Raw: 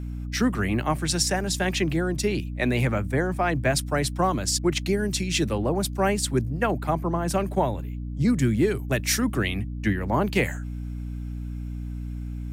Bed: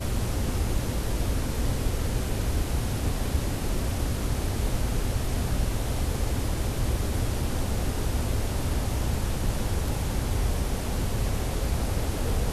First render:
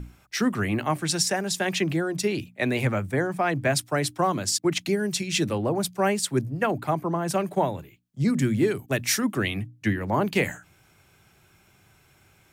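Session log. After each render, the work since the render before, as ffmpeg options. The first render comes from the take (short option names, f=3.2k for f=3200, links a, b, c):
-af "bandreject=f=60:t=h:w=6,bandreject=f=120:t=h:w=6,bandreject=f=180:t=h:w=6,bandreject=f=240:t=h:w=6,bandreject=f=300:t=h:w=6"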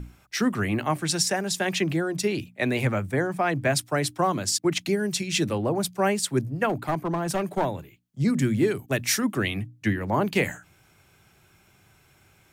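-filter_complex "[0:a]asettb=1/sr,asplit=3[a][b][c];[a]atrim=end=6.694[d];[b]atrim=start=6.69:end=7.65,asetpts=PTS-STARTPTS,afade=t=in:d=0.004:c=qsin,afade=t=out:st=0.956:d=0.004:c=qsin,aeval=exprs='clip(val(0),-1,0.0708)':c=same[e];[c]atrim=start=7.646[f];[d][e]acrossfade=d=0.004:c1=hsin:c2=qsin[g];[g][f]acrossfade=d=0.004:c1=qsin:c2=hsin"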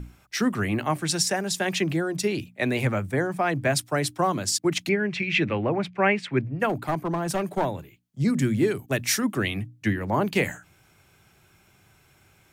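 -filter_complex "[0:a]asettb=1/sr,asplit=3[a][b][c];[a]atrim=end=4.894[d];[b]atrim=start=4.89:end=6.6,asetpts=PTS-STARTPTS,afade=t=in:d=0.004:c=qsin,afade=t=out:st=1.706:d=0.004:c=qsin,lowpass=f=2.3k:t=q:w=3.4[e];[c]atrim=start=6.596[f];[d][e]acrossfade=d=0.004:c1=hsin:c2=qsin[g];[g][f]acrossfade=d=0.004:c1=qsin:c2=hsin"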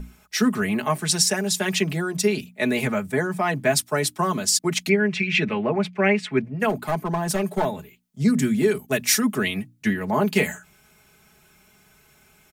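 -af "highshelf=f=6.1k:g=5.5,aecho=1:1:4.7:0.79"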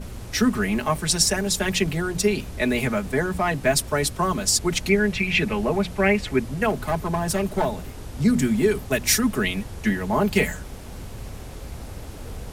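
-filter_complex "[1:a]volume=-9dB[a];[0:a][a]amix=inputs=2:normalize=0"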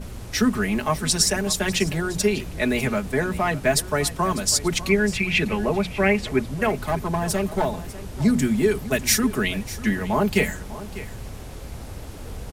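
-af "aecho=1:1:598:0.158"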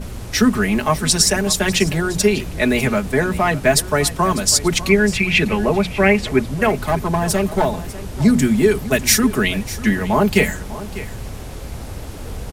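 -af "volume=5.5dB,alimiter=limit=-2dB:level=0:latency=1"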